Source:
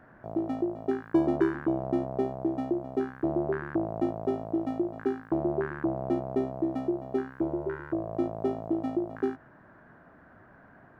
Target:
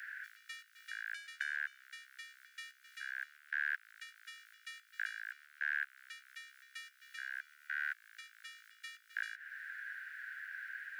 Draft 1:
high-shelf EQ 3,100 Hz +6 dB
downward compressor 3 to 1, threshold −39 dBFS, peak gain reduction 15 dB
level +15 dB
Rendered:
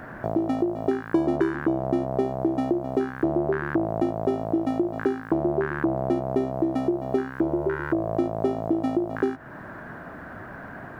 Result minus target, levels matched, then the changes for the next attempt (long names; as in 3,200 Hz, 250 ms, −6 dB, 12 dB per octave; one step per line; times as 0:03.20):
2,000 Hz band −16.5 dB
add after downward compressor: Butterworth high-pass 1,500 Hz 96 dB per octave